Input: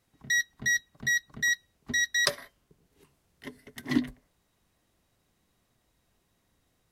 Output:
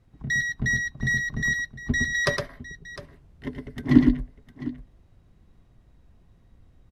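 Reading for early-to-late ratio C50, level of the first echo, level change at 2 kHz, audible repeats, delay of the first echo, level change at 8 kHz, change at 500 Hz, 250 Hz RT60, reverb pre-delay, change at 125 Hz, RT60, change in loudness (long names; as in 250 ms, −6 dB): no reverb audible, −5.0 dB, +3.0 dB, 2, 112 ms, −4.0 dB, +8.0 dB, no reverb audible, no reverb audible, +16.5 dB, no reverb audible, +3.0 dB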